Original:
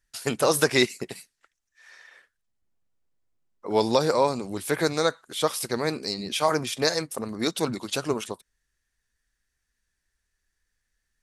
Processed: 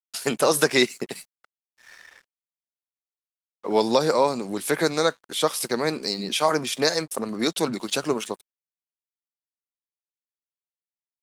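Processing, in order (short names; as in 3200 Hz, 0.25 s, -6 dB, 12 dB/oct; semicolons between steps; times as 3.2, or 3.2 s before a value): HPF 150 Hz 24 dB/oct; in parallel at 0 dB: compressor 4:1, threshold -33 dBFS, peak gain reduction 15 dB; on the sum: crossover distortion -50 dBFS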